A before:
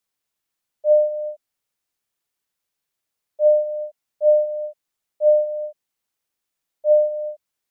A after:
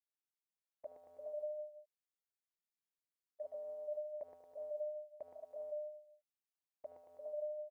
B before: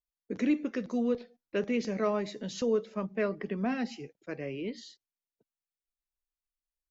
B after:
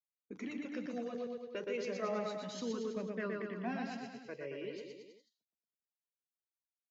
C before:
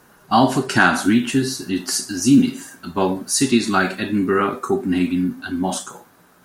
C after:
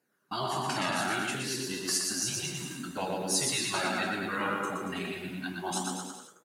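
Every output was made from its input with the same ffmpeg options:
-af "highpass=190,flanger=delay=0.4:depth=1.8:regen=-14:speed=0.33:shape=triangular,agate=range=0.2:threshold=0.00398:ratio=16:detection=peak,dynaudnorm=f=110:g=9:m=1.58,aecho=1:1:120|228|325.2|412.7|491.4:0.631|0.398|0.251|0.158|0.1,afftfilt=real='re*lt(hypot(re,im),0.501)':imag='im*lt(hypot(re,im),0.501)':win_size=1024:overlap=0.75,volume=0.398"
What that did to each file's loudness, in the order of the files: -26.5 LU, -8.0 LU, -12.5 LU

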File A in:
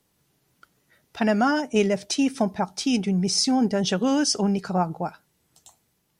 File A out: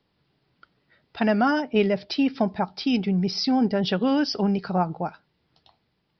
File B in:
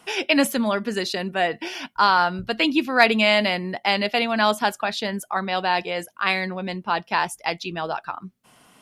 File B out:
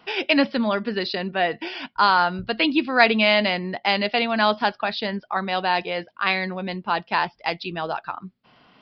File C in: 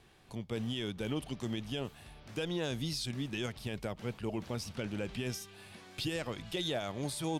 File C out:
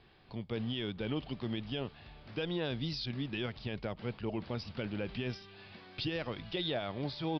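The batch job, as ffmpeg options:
-af "aresample=11025,aresample=44100"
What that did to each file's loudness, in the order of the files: -0.5 LU, 0.0 LU, 0.0 LU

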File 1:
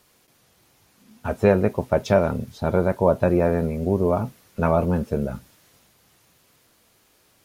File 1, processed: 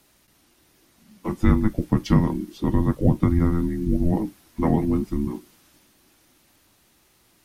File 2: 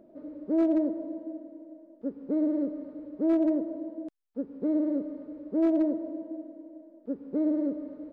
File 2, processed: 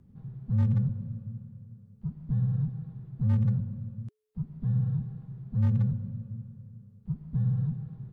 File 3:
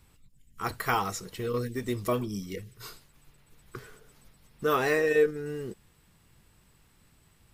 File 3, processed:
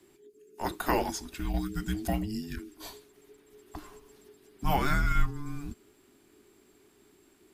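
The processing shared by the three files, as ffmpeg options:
-af "afreqshift=-430"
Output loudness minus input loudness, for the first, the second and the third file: -1.0 LU, -0.5 LU, -3.0 LU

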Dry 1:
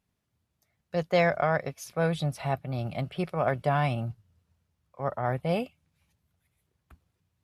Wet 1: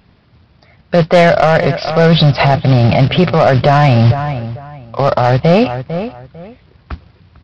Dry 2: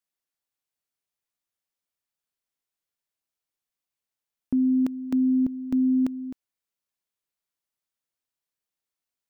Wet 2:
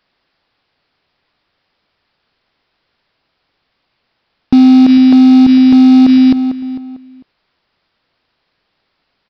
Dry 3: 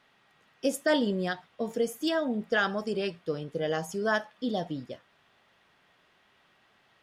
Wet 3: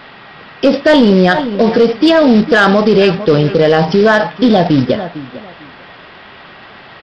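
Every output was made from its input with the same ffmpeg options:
-filter_complex "[0:a]equalizer=f=4000:t=o:w=1.7:g=-3.5,aresample=11025,acrusher=bits=4:mode=log:mix=0:aa=0.000001,aresample=44100,asoftclip=type=tanh:threshold=0.1,asplit=2[s0][s1];[s1]adelay=449,lowpass=f=3000:p=1,volume=0.1,asplit=2[s2][s3];[s3]adelay=449,lowpass=f=3000:p=1,volume=0.22[s4];[s0][s2][s4]amix=inputs=3:normalize=0,alimiter=level_in=35.5:limit=0.891:release=50:level=0:latency=1,volume=0.891"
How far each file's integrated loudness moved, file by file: +18.0 LU, +17.0 LU, +19.5 LU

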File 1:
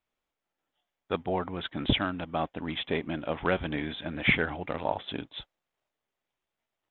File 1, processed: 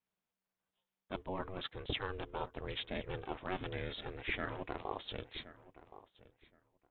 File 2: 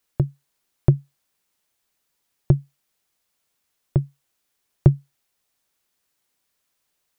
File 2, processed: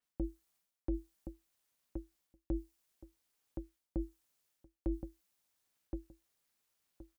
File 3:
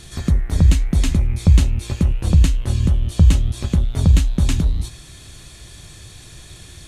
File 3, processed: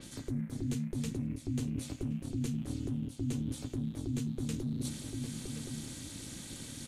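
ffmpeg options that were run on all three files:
-filter_complex "[0:a]asplit=2[s0][s1];[s1]adelay=1071,lowpass=f=2100:p=1,volume=0.119,asplit=2[s2][s3];[s3]adelay=1071,lowpass=f=2100:p=1,volume=0.18[s4];[s0][s2][s4]amix=inputs=3:normalize=0,areverse,acompressor=threshold=0.0398:ratio=5,areverse,aeval=exprs='val(0)*sin(2*PI*190*n/s)':c=same,adynamicequalizer=threshold=0.00112:dfrequency=5100:dqfactor=0.7:tfrequency=5100:tqfactor=0.7:attack=5:release=100:ratio=0.375:range=3:mode=boostabove:tftype=highshelf,volume=0.631"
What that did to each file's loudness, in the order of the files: -11.0 LU, -21.0 LU, -20.0 LU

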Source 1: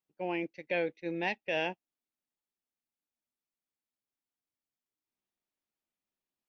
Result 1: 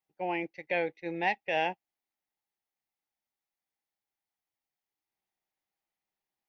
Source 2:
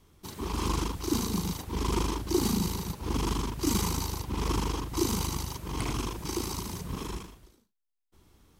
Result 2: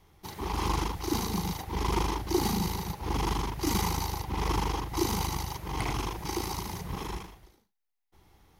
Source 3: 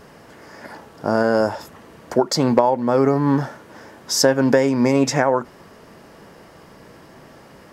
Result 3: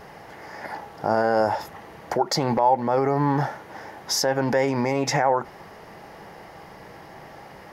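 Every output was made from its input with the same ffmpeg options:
-af "alimiter=limit=0.237:level=0:latency=1:release=65,equalizer=f=250:t=o:w=0.33:g=-7,equalizer=f=800:t=o:w=0.33:g=10,equalizer=f=2000:t=o:w=0.33:g=6,equalizer=f=8000:t=o:w=0.33:g=-8"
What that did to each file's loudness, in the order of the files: +2.0 LU, 0.0 LU, -4.5 LU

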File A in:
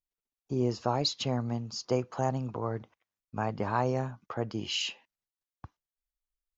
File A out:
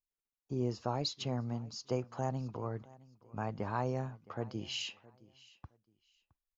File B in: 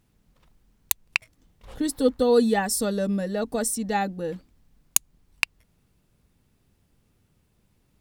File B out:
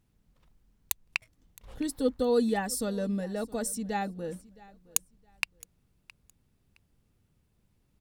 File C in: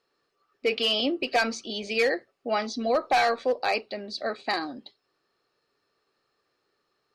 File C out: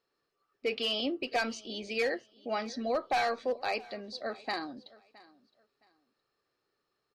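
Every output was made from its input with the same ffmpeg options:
-af "lowshelf=f=190:g=4,aecho=1:1:666|1332:0.0794|0.0191,volume=0.447"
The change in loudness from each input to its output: -6.0 LU, -6.5 LU, -6.5 LU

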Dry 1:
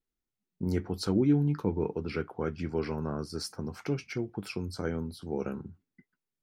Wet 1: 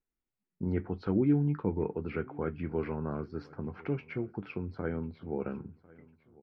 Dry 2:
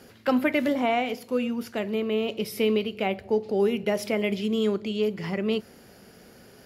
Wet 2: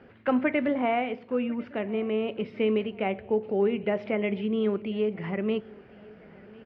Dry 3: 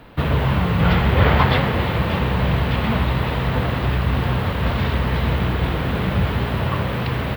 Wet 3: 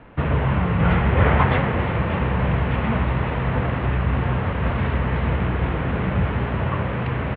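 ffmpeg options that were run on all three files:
-filter_complex "[0:a]lowpass=f=2600:w=0.5412,lowpass=f=2600:w=1.3066,asplit=2[s0][s1];[s1]aecho=0:1:1049|2098|3147:0.0708|0.0304|0.0131[s2];[s0][s2]amix=inputs=2:normalize=0,volume=0.841"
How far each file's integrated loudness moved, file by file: -1.5 LU, -1.5 LU, -1.5 LU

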